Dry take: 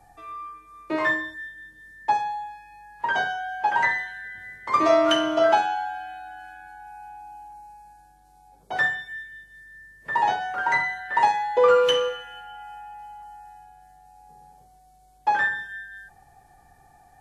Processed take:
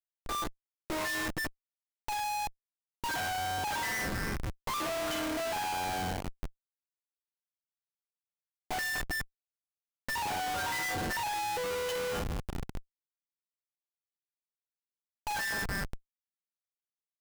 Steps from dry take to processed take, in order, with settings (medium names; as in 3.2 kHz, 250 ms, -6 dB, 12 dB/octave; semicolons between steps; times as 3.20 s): single-diode clipper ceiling -21 dBFS; Schmitt trigger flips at -34.5 dBFS; trim -4.5 dB